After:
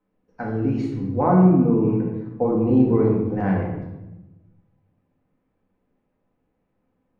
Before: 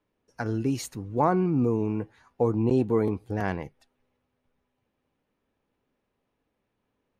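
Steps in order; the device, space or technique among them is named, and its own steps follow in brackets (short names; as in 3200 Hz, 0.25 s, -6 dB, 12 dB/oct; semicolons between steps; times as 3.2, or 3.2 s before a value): phone in a pocket (LPF 3400 Hz 12 dB/oct; bell 190 Hz +3 dB 0.24 oct; high shelf 2200 Hz -11 dB); shoebox room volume 450 m³, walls mixed, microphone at 2 m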